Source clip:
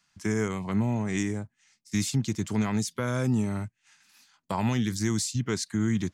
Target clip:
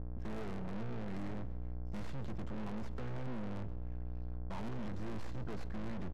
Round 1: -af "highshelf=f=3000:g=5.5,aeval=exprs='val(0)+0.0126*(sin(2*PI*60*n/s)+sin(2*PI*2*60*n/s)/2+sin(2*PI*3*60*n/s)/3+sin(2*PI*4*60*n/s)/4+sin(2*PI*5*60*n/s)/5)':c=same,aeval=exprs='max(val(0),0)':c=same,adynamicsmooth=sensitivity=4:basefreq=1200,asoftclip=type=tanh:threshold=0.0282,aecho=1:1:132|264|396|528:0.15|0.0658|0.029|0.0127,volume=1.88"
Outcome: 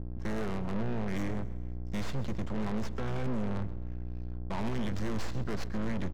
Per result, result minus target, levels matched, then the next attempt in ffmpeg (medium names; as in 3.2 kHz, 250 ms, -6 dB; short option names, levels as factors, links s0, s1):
8 kHz band +5.5 dB; saturation: distortion -5 dB
-af "aeval=exprs='val(0)+0.0126*(sin(2*PI*60*n/s)+sin(2*PI*2*60*n/s)/2+sin(2*PI*3*60*n/s)/3+sin(2*PI*4*60*n/s)/4+sin(2*PI*5*60*n/s)/5)':c=same,aeval=exprs='max(val(0),0)':c=same,adynamicsmooth=sensitivity=4:basefreq=1200,asoftclip=type=tanh:threshold=0.0282,aecho=1:1:132|264|396|528:0.15|0.0658|0.029|0.0127,volume=1.88"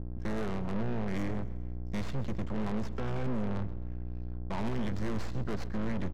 saturation: distortion -5 dB
-af "aeval=exprs='val(0)+0.0126*(sin(2*PI*60*n/s)+sin(2*PI*2*60*n/s)/2+sin(2*PI*3*60*n/s)/3+sin(2*PI*4*60*n/s)/4+sin(2*PI*5*60*n/s)/5)':c=same,aeval=exprs='max(val(0),0)':c=same,adynamicsmooth=sensitivity=4:basefreq=1200,asoftclip=type=tanh:threshold=0.00944,aecho=1:1:132|264|396|528:0.15|0.0658|0.029|0.0127,volume=1.88"